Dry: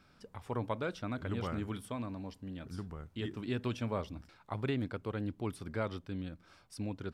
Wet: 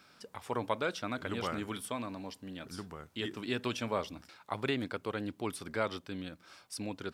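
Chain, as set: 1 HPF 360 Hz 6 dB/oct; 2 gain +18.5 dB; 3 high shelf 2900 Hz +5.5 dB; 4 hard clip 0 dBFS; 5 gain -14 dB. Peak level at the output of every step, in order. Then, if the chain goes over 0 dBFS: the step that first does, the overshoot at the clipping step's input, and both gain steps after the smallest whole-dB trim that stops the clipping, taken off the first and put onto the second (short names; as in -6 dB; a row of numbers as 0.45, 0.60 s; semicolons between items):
-22.0, -3.5, -2.5, -2.5, -16.5 dBFS; no overload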